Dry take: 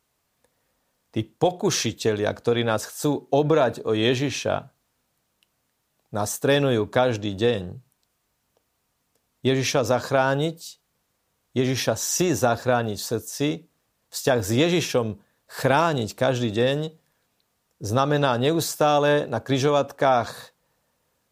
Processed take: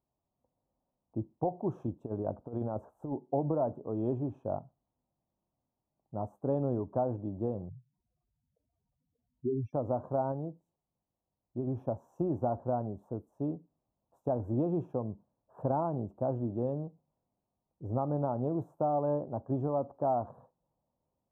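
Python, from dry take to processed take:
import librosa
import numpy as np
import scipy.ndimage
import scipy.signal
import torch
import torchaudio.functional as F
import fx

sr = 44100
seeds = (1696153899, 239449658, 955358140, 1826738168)

y = fx.over_compress(x, sr, threshold_db=-23.0, ratio=-0.5, at=(1.75, 3.15))
y = fx.spec_expand(y, sr, power=3.9, at=(7.69, 9.73))
y = fx.edit(y, sr, fx.clip_gain(start_s=10.32, length_s=1.35, db=-3.5), tone=tone)
y = scipy.signal.sosfilt(scipy.signal.cheby2(4, 40, 1800.0, 'lowpass', fs=sr, output='sos'), y)
y = fx.peak_eq(y, sr, hz=460.0, db=-8.5, octaves=0.28)
y = y * 10.0 ** (-8.5 / 20.0)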